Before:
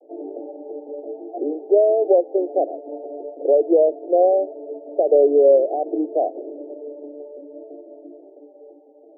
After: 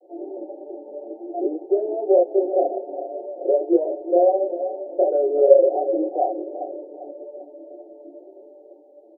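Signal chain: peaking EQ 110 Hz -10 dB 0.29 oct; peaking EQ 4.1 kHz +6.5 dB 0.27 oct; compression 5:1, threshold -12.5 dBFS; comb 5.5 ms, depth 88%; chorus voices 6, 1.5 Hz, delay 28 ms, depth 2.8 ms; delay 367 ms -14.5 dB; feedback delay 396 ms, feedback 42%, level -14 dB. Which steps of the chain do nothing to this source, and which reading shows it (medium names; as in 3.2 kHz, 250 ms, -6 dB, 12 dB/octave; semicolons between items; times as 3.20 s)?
peaking EQ 110 Hz: input has nothing below 270 Hz; peaking EQ 4.1 kHz: input has nothing above 810 Hz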